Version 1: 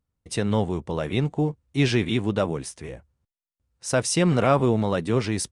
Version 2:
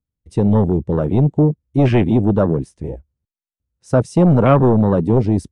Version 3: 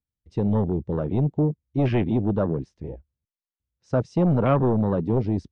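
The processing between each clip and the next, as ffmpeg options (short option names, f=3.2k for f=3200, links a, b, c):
-filter_complex "[0:a]afwtdn=0.0447,acrossover=split=460|760[a][b][c];[a]aeval=exprs='0.237*sin(PI/2*1.78*val(0)/0.237)':c=same[d];[d][b][c]amix=inputs=3:normalize=0,volume=4dB"
-af "lowpass=f=5.5k:w=0.5412,lowpass=f=5.5k:w=1.3066,volume=-8dB"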